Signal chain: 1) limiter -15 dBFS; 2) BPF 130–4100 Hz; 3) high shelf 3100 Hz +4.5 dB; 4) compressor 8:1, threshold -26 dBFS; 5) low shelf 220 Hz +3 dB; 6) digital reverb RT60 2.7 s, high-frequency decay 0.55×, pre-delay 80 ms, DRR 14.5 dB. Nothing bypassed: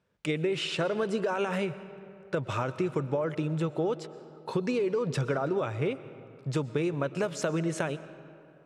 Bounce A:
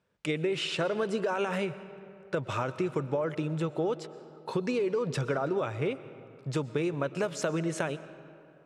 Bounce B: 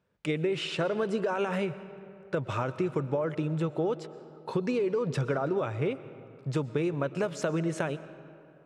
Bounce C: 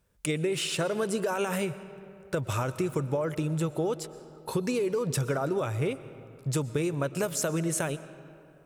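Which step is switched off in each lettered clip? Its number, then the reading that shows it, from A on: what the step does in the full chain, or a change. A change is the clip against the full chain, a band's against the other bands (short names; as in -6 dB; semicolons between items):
5, 125 Hz band -2.0 dB; 3, 4 kHz band -2.0 dB; 2, 8 kHz band +10.5 dB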